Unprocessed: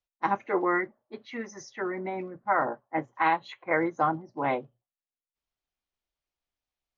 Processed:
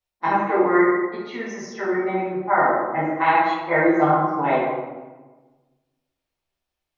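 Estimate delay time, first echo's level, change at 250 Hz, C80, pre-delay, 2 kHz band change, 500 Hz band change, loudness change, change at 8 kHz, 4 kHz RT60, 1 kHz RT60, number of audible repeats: none, none, +11.0 dB, 3.0 dB, 6 ms, +7.5 dB, +10.0 dB, +8.5 dB, n/a, 0.75 s, 1.2 s, none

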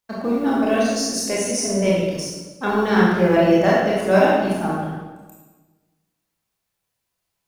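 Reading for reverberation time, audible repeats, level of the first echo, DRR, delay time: 1.3 s, none, none, -6.5 dB, none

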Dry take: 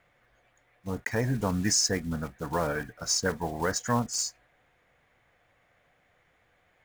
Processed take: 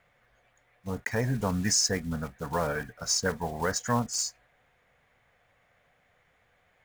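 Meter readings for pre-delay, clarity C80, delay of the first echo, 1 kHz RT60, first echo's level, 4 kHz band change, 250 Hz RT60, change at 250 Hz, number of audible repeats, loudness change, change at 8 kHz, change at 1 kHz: none, none, none, none, none, 0.0 dB, none, -1.0 dB, none, 0.0 dB, 0.0 dB, 0.0 dB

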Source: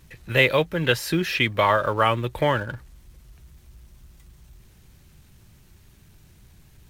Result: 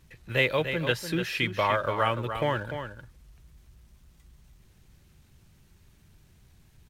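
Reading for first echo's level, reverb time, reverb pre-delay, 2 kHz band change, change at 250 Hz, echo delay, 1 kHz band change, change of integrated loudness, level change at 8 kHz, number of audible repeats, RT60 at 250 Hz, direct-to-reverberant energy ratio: -8.5 dB, none, none, -5.5 dB, -5.5 dB, 0.296 s, -5.5 dB, -5.5 dB, -7.0 dB, 1, none, none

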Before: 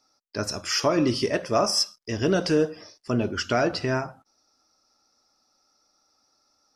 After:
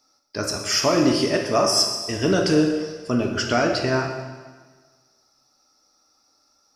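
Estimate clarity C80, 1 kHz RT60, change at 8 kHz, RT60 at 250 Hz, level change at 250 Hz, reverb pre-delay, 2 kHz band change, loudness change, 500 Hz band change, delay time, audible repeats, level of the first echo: 6.5 dB, 1.4 s, +5.5 dB, 1.5 s, +4.5 dB, 8 ms, +4.0 dB, +4.0 dB, +3.0 dB, none, none, none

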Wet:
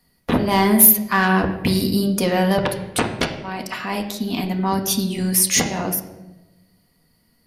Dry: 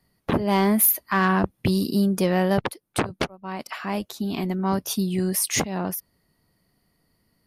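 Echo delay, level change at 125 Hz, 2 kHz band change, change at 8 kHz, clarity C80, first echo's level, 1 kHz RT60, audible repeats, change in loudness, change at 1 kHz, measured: none, +3.0 dB, +5.5 dB, +7.5 dB, 11.0 dB, none, 0.90 s, none, +5.0 dB, +4.0 dB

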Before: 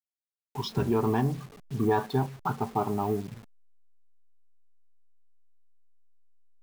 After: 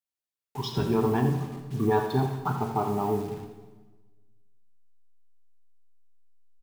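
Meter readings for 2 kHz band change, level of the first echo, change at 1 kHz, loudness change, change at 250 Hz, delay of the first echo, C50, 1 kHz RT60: +1.0 dB, -10.5 dB, +1.0 dB, +1.5 dB, +1.5 dB, 83 ms, 6.0 dB, 1.2 s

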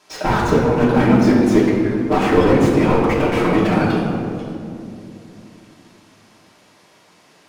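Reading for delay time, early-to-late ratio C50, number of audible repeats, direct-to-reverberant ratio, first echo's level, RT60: none, 0.5 dB, none, -7.0 dB, none, 2.7 s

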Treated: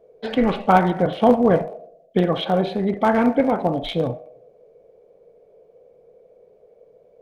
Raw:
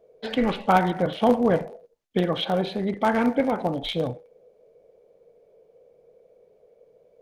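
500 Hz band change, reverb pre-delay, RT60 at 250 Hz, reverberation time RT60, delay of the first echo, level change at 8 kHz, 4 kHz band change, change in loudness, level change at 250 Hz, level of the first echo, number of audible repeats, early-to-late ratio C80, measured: +4.5 dB, 3 ms, 0.85 s, 0.90 s, none, n/a, 0.0 dB, +4.0 dB, +4.5 dB, none, none, 19.5 dB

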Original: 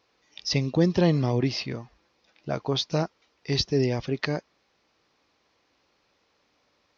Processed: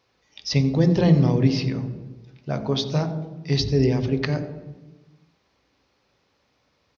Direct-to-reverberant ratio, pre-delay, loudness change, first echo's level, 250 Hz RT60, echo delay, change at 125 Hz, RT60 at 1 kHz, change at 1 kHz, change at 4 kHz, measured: 7.5 dB, 3 ms, +4.0 dB, -18.5 dB, 1.5 s, 89 ms, +6.5 dB, 1.1 s, +0.5 dB, +0.5 dB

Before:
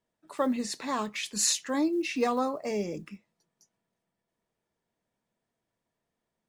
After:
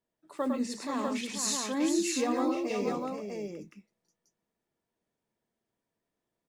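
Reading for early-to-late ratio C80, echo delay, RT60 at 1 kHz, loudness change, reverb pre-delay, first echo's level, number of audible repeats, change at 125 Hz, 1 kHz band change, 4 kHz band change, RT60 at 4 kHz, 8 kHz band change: none, 0.105 s, none, -2.0 dB, none, -4.5 dB, 3, -1.5 dB, -2.5 dB, -3.0 dB, none, -3.0 dB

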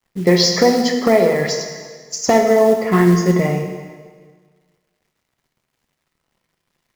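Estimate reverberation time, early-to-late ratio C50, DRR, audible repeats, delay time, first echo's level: 1.6 s, 5.0 dB, 3.0 dB, none, none, none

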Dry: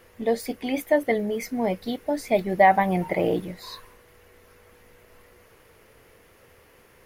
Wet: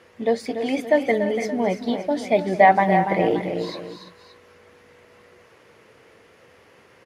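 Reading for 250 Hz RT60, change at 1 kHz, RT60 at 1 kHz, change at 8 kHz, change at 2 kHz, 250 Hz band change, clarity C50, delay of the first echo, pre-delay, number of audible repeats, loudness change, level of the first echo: none, +3.5 dB, none, n/a, +3.5 dB, +3.0 dB, none, 0.215 s, none, 4, +3.0 dB, -18.5 dB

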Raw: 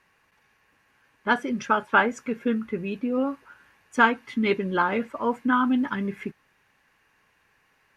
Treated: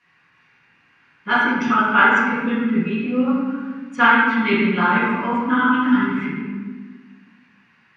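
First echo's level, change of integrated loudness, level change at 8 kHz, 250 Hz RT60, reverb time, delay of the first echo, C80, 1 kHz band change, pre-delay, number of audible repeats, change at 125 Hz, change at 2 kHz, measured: none, +7.0 dB, n/a, 2.1 s, 1.5 s, none, 1.5 dB, +7.0 dB, 4 ms, none, +7.5 dB, +8.5 dB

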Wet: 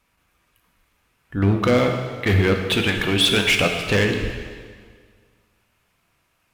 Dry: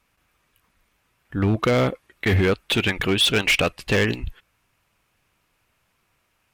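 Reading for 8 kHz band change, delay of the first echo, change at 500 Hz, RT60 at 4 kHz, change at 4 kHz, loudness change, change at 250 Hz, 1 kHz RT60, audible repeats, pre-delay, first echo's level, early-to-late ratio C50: +1.5 dB, none, +2.0 dB, 1.7 s, +1.5 dB, +2.0 dB, +2.5 dB, 1.8 s, none, 6 ms, none, 5.5 dB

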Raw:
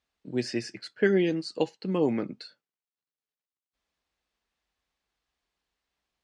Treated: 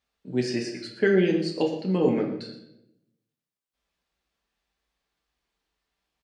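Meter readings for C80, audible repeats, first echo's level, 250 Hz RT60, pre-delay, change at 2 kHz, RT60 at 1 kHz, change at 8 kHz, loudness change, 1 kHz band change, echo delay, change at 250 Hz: 9.0 dB, 1, -13.0 dB, 1.1 s, 5 ms, +3.0 dB, 0.70 s, n/a, +3.0 dB, +2.5 dB, 0.118 s, +3.5 dB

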